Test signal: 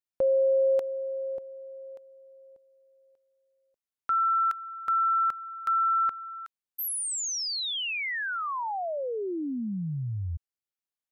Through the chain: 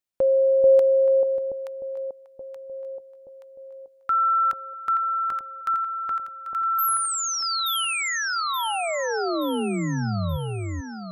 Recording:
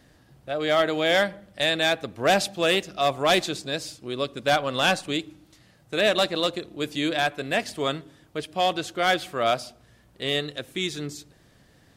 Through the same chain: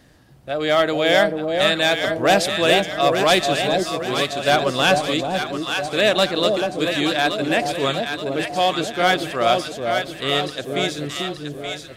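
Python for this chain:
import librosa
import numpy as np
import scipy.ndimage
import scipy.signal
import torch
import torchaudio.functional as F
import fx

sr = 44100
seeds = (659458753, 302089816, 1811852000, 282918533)

y = fx.echo_alternate(x, sr, ms=438, hz=830.0, feedback_pct=69, wet_db=-2.5)
y = F.gain(torch.from_numpy(y), 4.0).numpy()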